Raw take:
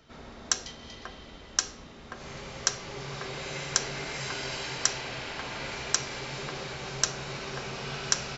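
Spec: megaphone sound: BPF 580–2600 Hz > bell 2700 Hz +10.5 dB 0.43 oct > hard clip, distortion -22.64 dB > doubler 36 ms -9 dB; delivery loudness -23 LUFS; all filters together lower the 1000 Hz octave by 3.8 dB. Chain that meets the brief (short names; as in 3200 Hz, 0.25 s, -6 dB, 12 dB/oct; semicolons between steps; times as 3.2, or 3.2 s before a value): BPF 580–2600 Hz; bell 1000 Hz -4.5 dB; bell 2700 Hz +10.5 dB 0.43 oct; hard clip -18 dBFS; doubler 36 ms -9 dB; gain +13 dB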